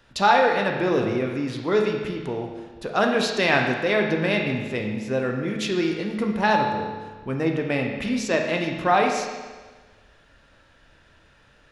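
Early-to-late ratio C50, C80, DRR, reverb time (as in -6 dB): 4.0 dB, 5.5 dB, 1.5 dB, 1.4 s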